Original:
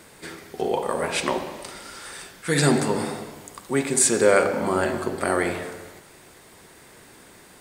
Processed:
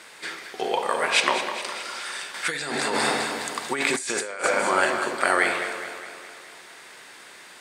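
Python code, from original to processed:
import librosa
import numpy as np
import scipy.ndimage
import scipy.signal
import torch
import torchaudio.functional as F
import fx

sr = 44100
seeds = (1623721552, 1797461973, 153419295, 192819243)

y = fx.bandpass_q(x, sr, hz=2600.0, q=0.56)
y = fx.echo_feedback(y, sr, ms=207, feedback_pct=59, wet_db=-11.0)
y = fx.over_compress(y, sr, threshold_db=-35.0, ratio=-1.0, at=(2.34, 4.44))
y = y * 10.0 ** (7.5 / 20.0)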